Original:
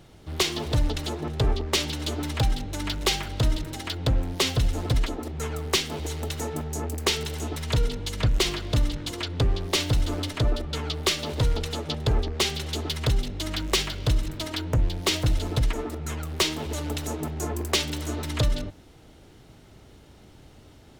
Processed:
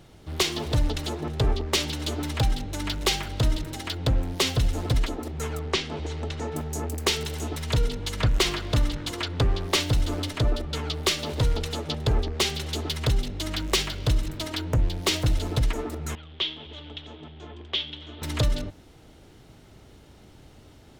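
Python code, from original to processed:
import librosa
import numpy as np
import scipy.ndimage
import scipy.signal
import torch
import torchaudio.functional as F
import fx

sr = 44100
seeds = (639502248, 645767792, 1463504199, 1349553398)

y = fx.air_absorb(x, sr, metres=120.0, at=(5.59, 6.52))
y = fx.peak_eq(y, sr, hz=1300.0, db=4.0, octaves=1.7, at=(8.02, 9.8))
y = fx.ladder_lowpass(y, sr, hz=3500.0, resonance_pct=80, at=(16.15, 18.22))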